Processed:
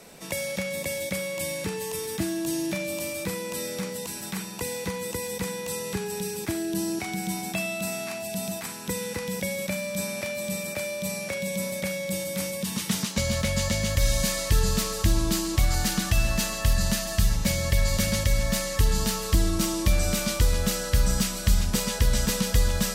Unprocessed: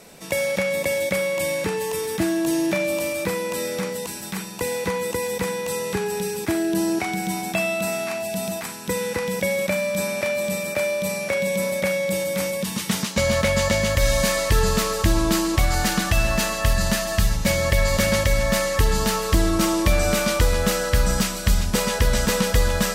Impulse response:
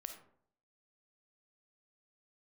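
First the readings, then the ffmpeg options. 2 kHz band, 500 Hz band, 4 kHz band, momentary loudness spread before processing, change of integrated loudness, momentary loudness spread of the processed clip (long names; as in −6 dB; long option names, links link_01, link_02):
−7.0 dB, −8.5 dB, −3.5 dB, 6 LU, −4.5 dB, 7 LU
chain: -filter_complex "[0:a]acrossover=split=250|3000[link_01][link_02][link_03];[link_02]acompressor=threshold=-36dB:ratio=2[link_04];[link_01][link_04][link_03]amix=inputs=3:normalize=0,volume=-2dB"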